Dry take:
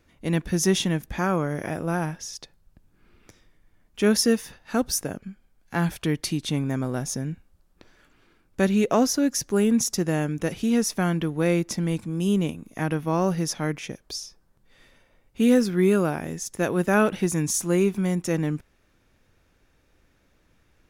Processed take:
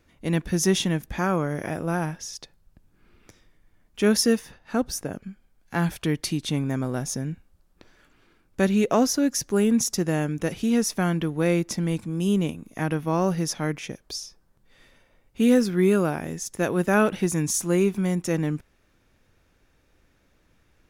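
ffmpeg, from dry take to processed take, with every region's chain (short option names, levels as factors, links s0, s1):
-filter_complex "[0:a]asettb=1/sr,asplit=3[s0][s1][s2];[s0]atrim=end=4.394[s3];[s1]atrim=start=4.39:end=5.13,asetpts=PTS-STARTPTS,afade=t=in:d=0.004:c=qsin,afade=t=out:st=0.736:d=0.004:c=qsin,lowpass=f=1800:p=1,aemphasis=mode=production:type=cd[s4];[s2]atrim=start=5.126[s5];[s3][s4]acrossfade=d=0.004:c1=hsin:c2=qsin[s6];[s6][s5]acrossfade=d=0.004:c1=qsin:c2=hsin"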